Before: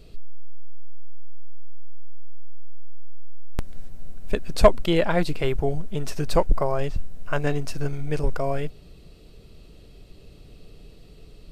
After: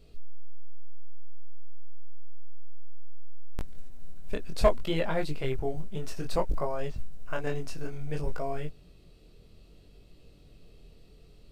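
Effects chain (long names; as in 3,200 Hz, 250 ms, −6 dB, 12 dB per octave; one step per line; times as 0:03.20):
floating-point word with a short mantissa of 6 bits
chorus effect 0.59 Hz, delay 19 ms, depth 6.7 ms
level −4.5 dB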